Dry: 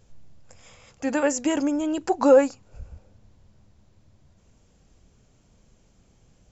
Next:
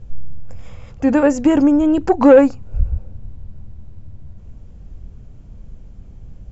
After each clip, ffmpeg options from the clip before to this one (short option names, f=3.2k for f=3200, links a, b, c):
-af "aemphasis=mode=reproduction:type=riaa,acontrast=67"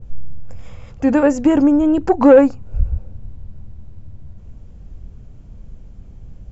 -af "adynamicequalizer=threshold=0.0251:dfrequency=1900:dqfactor=0.7:tfrequency=1900:tqfactor=0.7:attack=5:release=100:ratio=0.375:range=2:mode=cutabove:tftype=highshelf"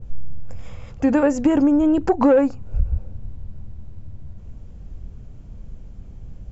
-af "acompressor=threshold=-14dB:ratio=3"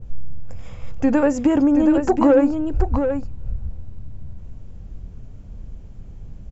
-af "aecho=1:1:726:0.447"